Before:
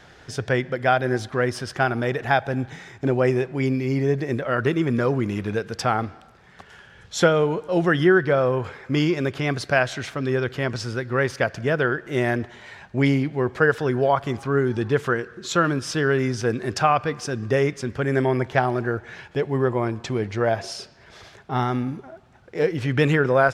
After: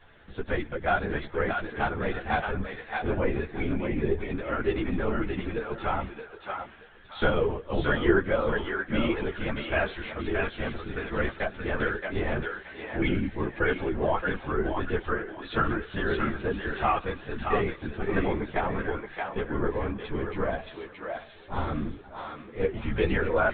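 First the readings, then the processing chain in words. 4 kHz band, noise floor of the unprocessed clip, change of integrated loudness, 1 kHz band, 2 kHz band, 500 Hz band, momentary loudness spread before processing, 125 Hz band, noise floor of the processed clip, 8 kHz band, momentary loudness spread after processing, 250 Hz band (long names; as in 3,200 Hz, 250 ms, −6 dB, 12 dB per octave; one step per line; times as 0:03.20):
−7.0 dB, −50 dBFS, −6.5 dB, −5.5 dB, −5.0 dB, −7.0 dB, 8 LU, −9.0 dB, −49 dBFS, below −40 dB, 9 LU, −6.5 dB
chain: linear-prediction vocoder at 8 kHz whisper
on a send: feedback echo with a high-pass in the loop 624 ms, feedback 31%, high-pass 730 Hz, level −3 dB
on the sum: string-ensemble chorus
level −3.5 dB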